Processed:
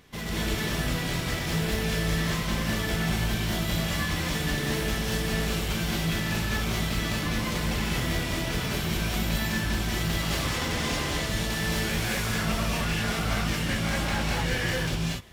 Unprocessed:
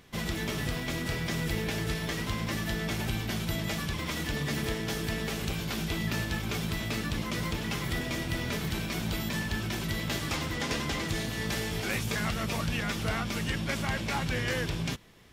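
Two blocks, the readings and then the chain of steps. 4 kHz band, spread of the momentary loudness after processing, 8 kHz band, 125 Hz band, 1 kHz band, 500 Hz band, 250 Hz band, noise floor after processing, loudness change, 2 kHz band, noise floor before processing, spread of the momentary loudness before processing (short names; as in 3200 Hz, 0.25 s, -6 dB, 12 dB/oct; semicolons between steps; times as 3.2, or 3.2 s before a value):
+5.0 dB, 1 LU, +5.0 dB, +4.0 dB, +4.0 dB, +3.5 dB, +3.5 dB, -31 dBFS, +4.0 dB, +4.0 dB, -36 dBFS, 2 LU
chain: hard clip -30.5 dBFS, distortion -11 dB; non-linear reverb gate 0.26 s rising, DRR -5 dB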